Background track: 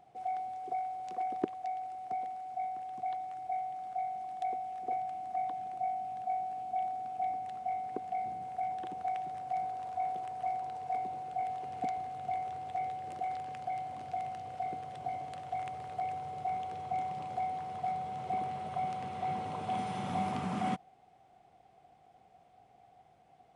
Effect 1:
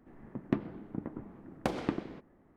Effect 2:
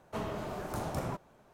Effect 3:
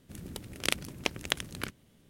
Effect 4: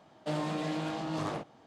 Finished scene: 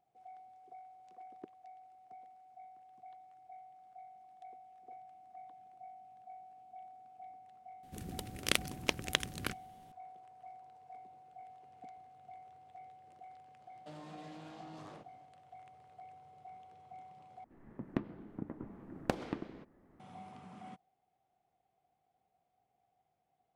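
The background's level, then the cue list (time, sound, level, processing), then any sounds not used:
background track -17.5 dB
7.83 add 3 -1.5 dB
13.6 add 4 -13 dB + compressor 2:1, threshold -36 dBFS
17.44 replace with 1 -8 dB + recorder AGC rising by 12 dB/s
not used: 2

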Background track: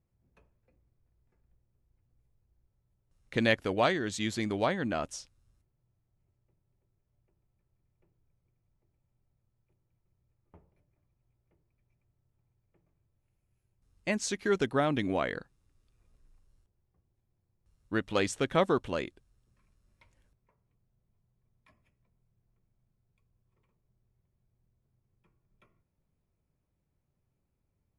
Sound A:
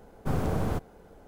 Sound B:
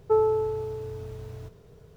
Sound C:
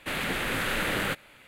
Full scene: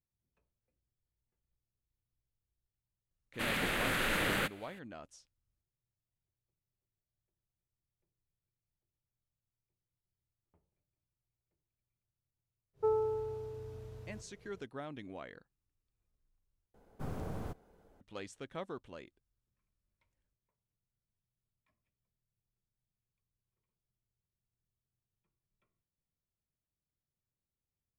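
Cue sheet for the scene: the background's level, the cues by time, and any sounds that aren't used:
background track -16.5 dB
3.33 add C -4 dB, fades 0.02 s
12.73 add B -9.5 dB, fades 0.10 s + downsampling 32000 Hz
16.74 replace with A -12.5 dB

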